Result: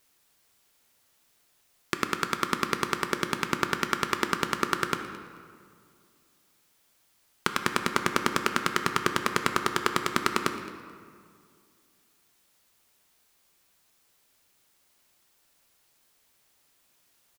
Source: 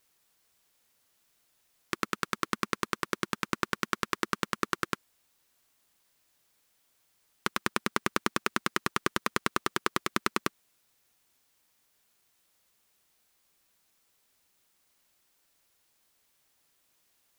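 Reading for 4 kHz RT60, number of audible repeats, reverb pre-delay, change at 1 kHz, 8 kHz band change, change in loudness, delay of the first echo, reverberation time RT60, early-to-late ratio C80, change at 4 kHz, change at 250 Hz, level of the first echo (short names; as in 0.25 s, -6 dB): 1.2 s, 1, 3 ms, +4.5 dB, +4.0 dB, +4.0 dB, 0.217 s, 2.2 s, 9.0 dB, +4.5 dB, +3.5 dB, -19.0 dB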